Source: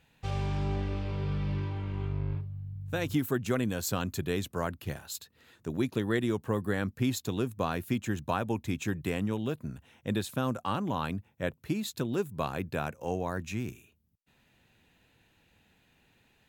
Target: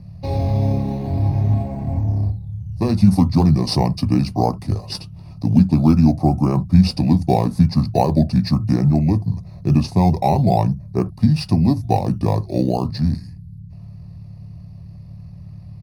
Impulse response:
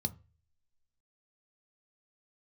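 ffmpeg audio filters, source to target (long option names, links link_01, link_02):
-filter_complex "[0:a]aeval=exprs='val(0)+0.00562*(sin(2*PI*50*n/s)+sin(2*PI*2*50*n/s)/2+sin(2*PI*3*50*n/s)/3+sin(2*PI*4*50*n/s)/4+sin(2*PI*5*50*n/s)/5)':channel_layout=same,equalizer=frequency=100:width_type=o:width=0.67:gain=-6,equalizer=frequency=1000:width_type=o:width=0.67:gain=9,equalizer=frequency=2500:width_type=o:width=0.67:gain=-6,equalizer=frequency=6300:width_type=o:width=0.67:gain=6,asetrate=29433,aresample=44100,atempo=1.49831,asplit=2[link_01][link_02];[link_02]acrusher=samples=11:mix=1:aa=0.000001:lfo=1:lforange=11:lforate=0.41,volume=-9.5dB[link_03];[link_01][link_03]amix=inputs=2:normalize=0[link_04];[1:a]atrim=start_sample=2205,atrim=end_sample=3528[link_05];[link_04][link_05]afir=irnorm=-1:irlink=0,asetrate=45938,aresample=44100,volume=3dB"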